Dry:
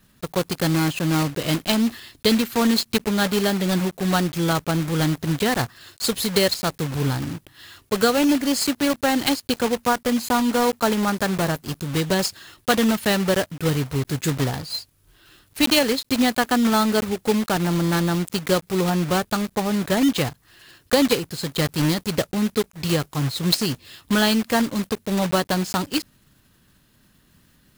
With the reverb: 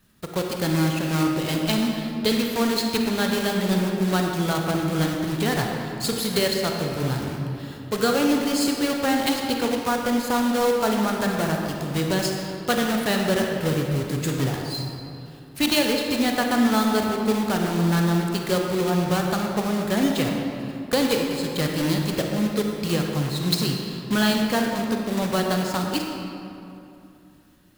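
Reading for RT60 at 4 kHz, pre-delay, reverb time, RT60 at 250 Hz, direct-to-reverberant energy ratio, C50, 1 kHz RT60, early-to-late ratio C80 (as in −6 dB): 1.6 s, 34 ms, 2.8 s, 3.0 s, 1.0 dB, 1.5 dB, 2.7 s, 3.0 dB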